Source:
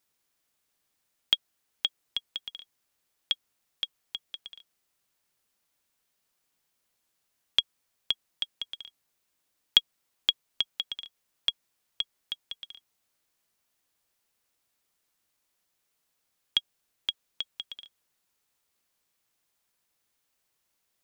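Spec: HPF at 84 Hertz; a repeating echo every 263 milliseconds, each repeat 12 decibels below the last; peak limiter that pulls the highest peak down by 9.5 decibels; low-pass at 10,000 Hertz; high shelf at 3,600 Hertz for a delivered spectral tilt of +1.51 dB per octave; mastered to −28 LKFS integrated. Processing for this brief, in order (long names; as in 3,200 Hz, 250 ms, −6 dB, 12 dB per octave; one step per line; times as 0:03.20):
high-pass filter 84 Hz
low-pass filter 10,000 Hz
high-shelf EQ 3,600 Hz +7 dB
brickwall limiter −10 dBFS
repeating echo 263 ms, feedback 25%, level −12 dB
level +4.5 dB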